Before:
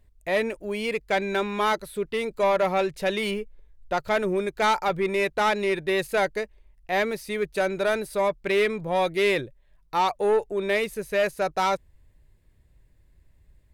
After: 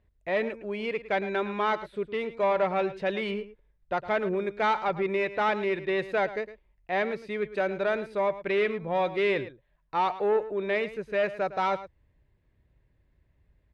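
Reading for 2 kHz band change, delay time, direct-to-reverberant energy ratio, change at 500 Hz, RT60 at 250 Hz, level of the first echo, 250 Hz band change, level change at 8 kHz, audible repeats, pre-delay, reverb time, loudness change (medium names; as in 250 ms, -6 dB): -3.5 dB, 109 ms, no reverb, -3.0 dB, no reverb, -14.5 dB, -3.0 dB, under -15 dB, 1, no reverb, no reverb, -3.0 dB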